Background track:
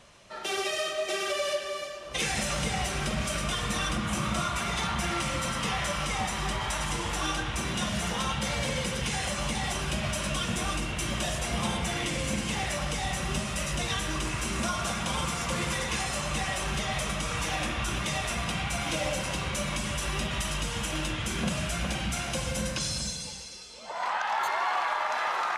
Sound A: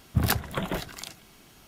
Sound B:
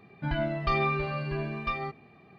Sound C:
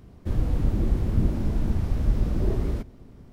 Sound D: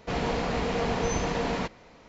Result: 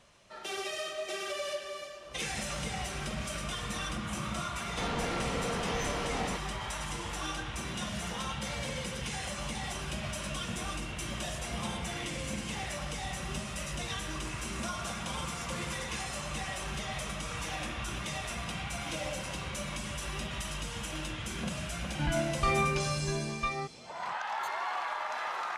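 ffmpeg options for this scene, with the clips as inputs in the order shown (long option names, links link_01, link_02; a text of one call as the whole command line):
ffmpeg -i bed.wav -i cue0.wav -i cue1.wav -i cue2.wav -i cue3.wav -filter_complex "[0:a]volume=-6.5dB[link_01];[4:a]asoftclip=type=tanh:threshold=-28dB,atrim=end=2.08,asetpts=PTS-STARTPTS,volume=-3dB,afade=type=in:duration=0.004:curve=hsin,afade=type=out:start_time=2.076:duration=0.004:curve=hsin,adelay=4700[link_02];[2:a]atrim=end=2.38,asetpts=PTS-STARTPTS,volume=-1.5dB,afade=type=in:duration=0.004:curve=hsin,afade=type=out:start_time=2.376:duration=0.004:curve=hsin,adelay=21760[link_03];[link_01][link_02][link_03]amix=inputs=3:normalize=0" out.wav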